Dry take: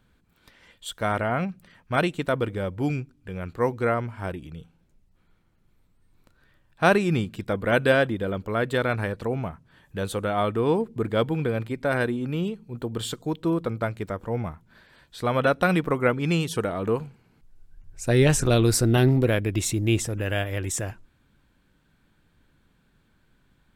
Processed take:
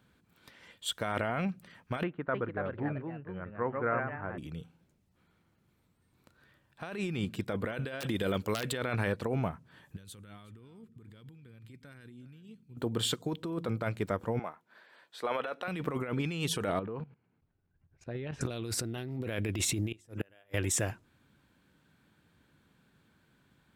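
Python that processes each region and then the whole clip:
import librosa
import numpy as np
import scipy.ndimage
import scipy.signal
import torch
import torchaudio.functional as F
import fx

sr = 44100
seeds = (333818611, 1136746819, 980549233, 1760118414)

y = fx.chain(x, sr, fx.ladder_lowpass(hz=1800.0, resonance_pct=40),
    fx.echo_pitch(ms=311, semitones=2, count=2, db_per_echo=-6.0), at=(2.03, 4.38))
y = fx.chain(y, sr, fx.high_shelf(hz=3000.0, db=11.0),
    fx.overflow_wrap(gain_db=13.0), at=(8.0, 8.72))
y = fx.chain(y, sr, fx.tone_stack(knobs='6-0-2'),
    fx.over_compress(threshold_db=-50.0, ratio=-1.0),
    fx.echo_single(ms=368, db=-19.5), at=(9.96, 12.77))
y = fx.chain(y, sr, fx.highpass(hz=480.0, slope=12),
    fx.high_shelf(hz=3000.0, db=-8.5), at=(14.39, 15.68))
y = fx.chain(y, sr, fx.level_steps(step_db=18),
    fx.air_absorb(metres=310.0), at=(16.79, 18.41))
y = fx.chain(y, sr, fx.hum_notches(base_hz=50, count=7),
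    fx.gate_flip(shuts_db=-19.0, range_db=-33), at=(19.92, 20.54))
y = scipy.signal.sosfilt(scipy.signal.butter(2, 89.0, 'highpass', fs=sr, output='sos'), y)
y = fx.dynamic_eq(y, sr, hz=2800.0, q=1.1, threshold_db=-39.0, ratio=4.0, max_db=4)
y = fx.over_compress(y, sr, threshold_db=-28.0, ratio=-1.0)
y = F.gain(torch.from_numpy(y), -5.0).numpy()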